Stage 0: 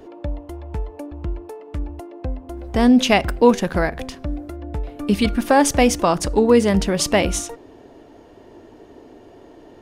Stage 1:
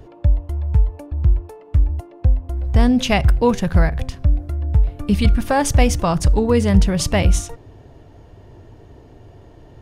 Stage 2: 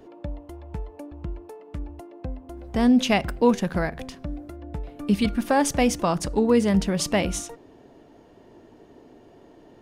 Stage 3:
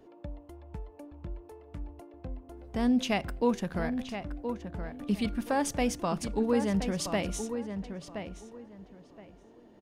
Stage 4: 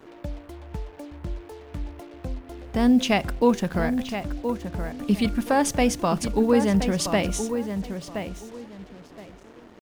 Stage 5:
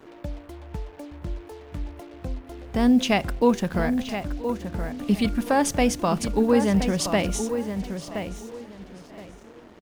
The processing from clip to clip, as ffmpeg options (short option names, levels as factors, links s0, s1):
-af "lowshelf=f=180:t=q:w=1.5:g=13,volume=0.794"
-af "lowshelf=f=150:t=q:w=1.5:g=-13.5,volume=0.631"
-filter_complex "[0:a]asplit=2[s0][s1];[s1]adelay=1022,lowpass=f=2700:p=1,volume=0.398,asplit=2[s2][s3];[s3]adelay=1022,lowpass=f=2700:p=1,volume=0.23,asplit=2[s4][s5];[s5]adelay=1022,lowpass=f=2700:p=1,volume=0.23[s6];[s0][s2][s4][s6]amix=inputs=4:normalize=0,volume=0.398"
-af "acrusher=bits=8:mix=0:aa=0.5,volume=2.37"
-af "aecho=1:1:978|1956:0.1|0.027"